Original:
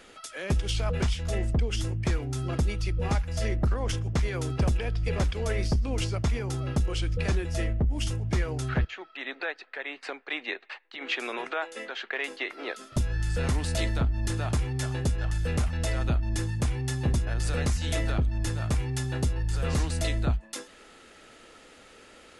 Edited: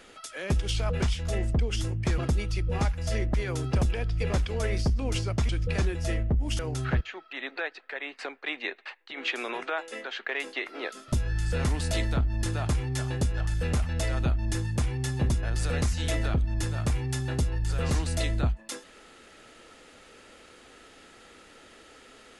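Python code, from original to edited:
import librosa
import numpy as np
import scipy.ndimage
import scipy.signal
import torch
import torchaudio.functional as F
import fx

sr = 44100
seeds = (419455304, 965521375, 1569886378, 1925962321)

y = fx.edit(x, sr, fx.cut(start_s=2.18, length_s=0.3),
    fx.cut(start_s=3.64, length_s=0.56),
    fx.cut(start_s=6.35, length_s=0.64),
    fx.cut(start_s=8.09, length_s=0.34), tone=tone)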